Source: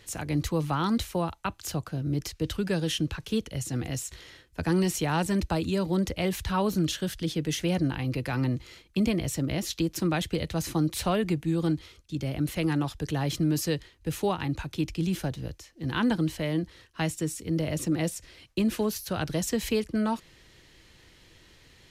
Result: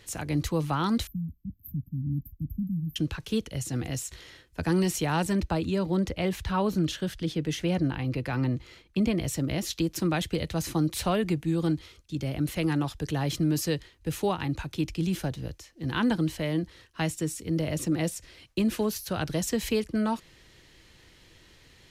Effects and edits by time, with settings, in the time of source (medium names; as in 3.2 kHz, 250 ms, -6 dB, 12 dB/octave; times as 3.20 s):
1.07–2.96 s: brick-wall FIR band-stop 290–12000 Hz
5.33–9.18 s: treble shelf 5 kHz -8 dB